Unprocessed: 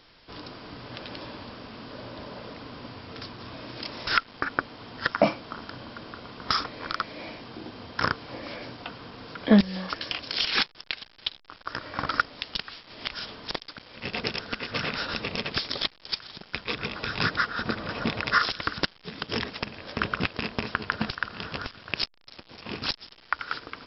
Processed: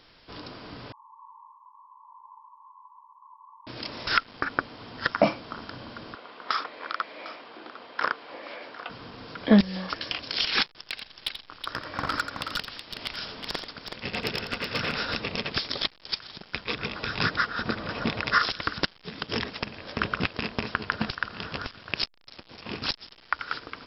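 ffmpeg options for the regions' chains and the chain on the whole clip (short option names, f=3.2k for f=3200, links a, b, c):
-filter_complex "[0:a]asettb=1/sr,asplit=3[a][b][c];[a]atrim=end=0.924[d];[b]atrim=start=0.92:end=3.67,asetpts=PTS-STARTPTS,afade=t=in:d=0.004:c=qsin,afade=t=out:st=2.746:d=0.004:c=qsin,asuperpass=centerf=990:order=12:qfactor=3.9,asplit=2[e][f];[f]adelay=21,volume=-11.5dB[g];[e][g]amix=inputs=2:normalize=0,atrim=end_sample=121275[h];[c]atrim=start=3.666[i];[d][h]acrossfade=d=0.004:c1=hsin:c2=qsin[j];[j][i]acrossfade=d=0.004:c1=qsin:c2=hsin,asettb=1/sr,asplit=3[k][l][m];[k]atrim=end=6.154[n];[l]atrim=start=6.15:end=8.9,asetpts=PTS-STARTPTS,afade=t=in:d=0.004:c=qsin,afade=t=out:st=2.746:d=0.004:c=qsin,highpass=450,lowpass=3.4k,aecho=1:1:753:0.158,atrim=end_sample=121275[o];[m]atrim=start=8.896[p];[n][o]acrossfade=d=0.004:c1=hsin:c2=qsin[q];[q][p]acrossfade=d=0.004:c1=qsin:c2=hsin,asettb=1/sr,asplit=3[r][s][t];[r]atrim=end=10.714[u];[s]atrim=start=10.71:end=15.15,asetpts=PTS-STARTPTS,afade=t=in:d=0.004:c=qsin,afade=t=out:st=4.436:d=0.004:c=qsin,volume=18.5dB,asoftclip=hard,volume=-18.5dB,aecho=1:1:85|373:0.355|0.501,atrim=end_sample=195804[v];[t]atrim=start=15.146[w];[u][v]acrossfade=d=0.004:c1=hsin:c2=qsin[x];[x][w]acrossfade=d=0.004:c1=qsin:c2=hsin"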